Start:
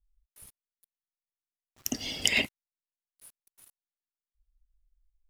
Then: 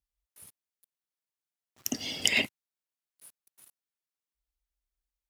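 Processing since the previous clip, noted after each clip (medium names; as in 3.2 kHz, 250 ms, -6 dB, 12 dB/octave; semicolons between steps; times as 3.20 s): high-pass 100 Hz 12 dB/octave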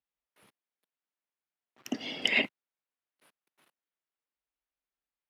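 three-band isolator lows -23 dB, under 160 Hz, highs -22 dB, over 3.4 kHz; trim +2 dB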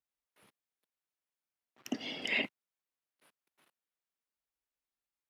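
peak limiter -18 dBFS, peak gain reduction 9.5 dB; trim -2.5 dB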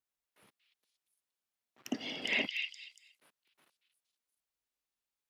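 repeats whose band climbs or falls 234 ms, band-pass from 3.4 kHz, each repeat 0.7 oct, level -2 dB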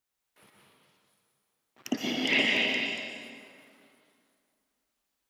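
reverberation RT60 2.4 s, pre-delay 108 ms, DRR -2 dB; trim +6 dB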